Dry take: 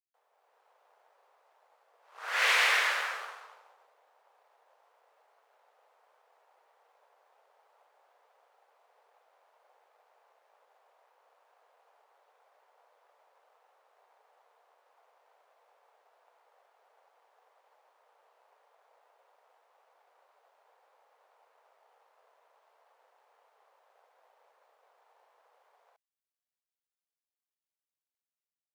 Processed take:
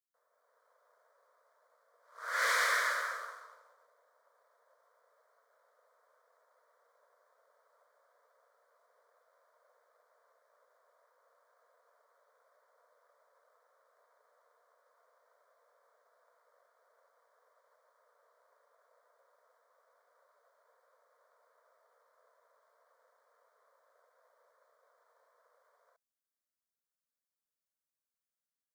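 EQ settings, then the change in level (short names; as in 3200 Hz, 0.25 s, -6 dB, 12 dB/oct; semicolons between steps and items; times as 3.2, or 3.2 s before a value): fixed phaser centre 540 Hz, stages 8; 0.0 dB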